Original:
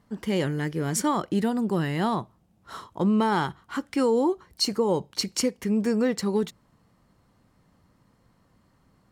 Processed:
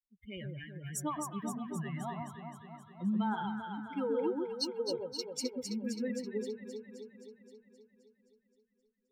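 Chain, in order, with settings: expander on every frequency bin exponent 3; on a send: echo whose repeats swap between lows and highs 131 ms, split 1.2 kHz, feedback 79%, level -3 dB; on the sum: trim -7.5 dB

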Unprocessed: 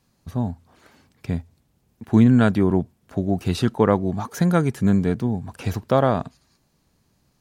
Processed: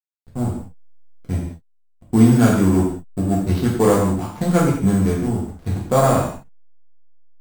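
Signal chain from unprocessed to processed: sample-rate reducer 8.2 kHz, jitter 0%; hysteresis with a dead band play -24 dBFS; gated-style reverb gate 230 ms falling, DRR -5 dB; trim -2.5 dB

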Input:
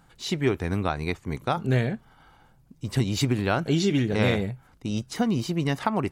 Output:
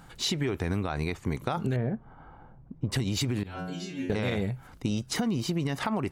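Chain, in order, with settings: 1.76–2.92 s: low-pass 1.1 kHz 12 dB/octave; peak limiter -19 dBFS, peak gain reduction 9.5 dB; 3.43–4.10 s: inharmonic resonator 89 Hz, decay 0.85 s, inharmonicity 0.002; compression 5:1, threshold -33 dBFS, peak gain reduction 10 dB; trim +7 dB

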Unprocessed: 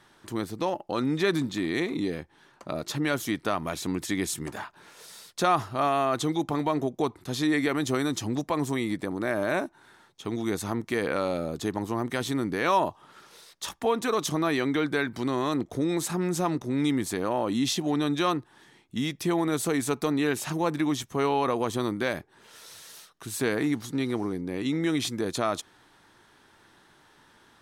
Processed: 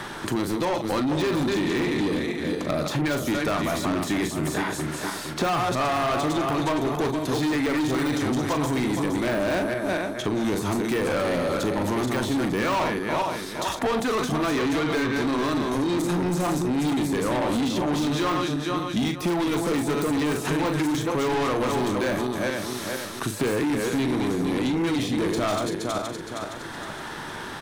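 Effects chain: backward echo that repeats 232 ms, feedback 49%, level -6 dB; de-esser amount 80%; doubling 40 ms -9.5 dB; saturation -28.5 dBFS, distortion -8 dB; three bands compressed up and down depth 70%; trim +7.5 dB

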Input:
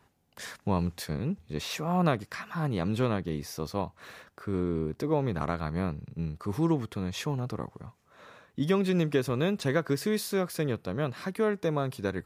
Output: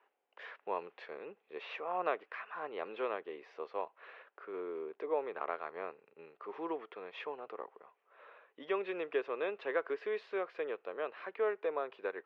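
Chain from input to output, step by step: elliptic band-pass 420–2800 Hz, stop band 70 dB; trim -4.5 dB

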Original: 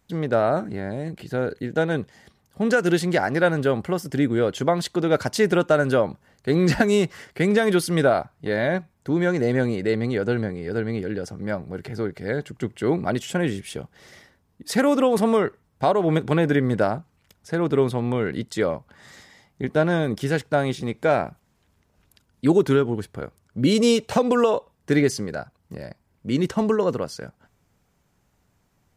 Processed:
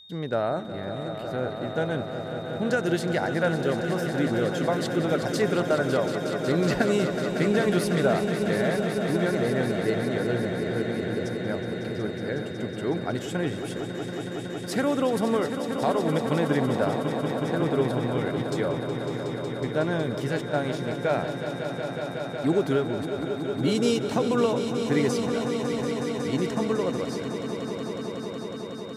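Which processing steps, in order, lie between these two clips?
whistle 3.7 kHz -41 dBFS; echo with a slow build-up 184 ms, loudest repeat 5, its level -10.5 dB; trim -6 dB

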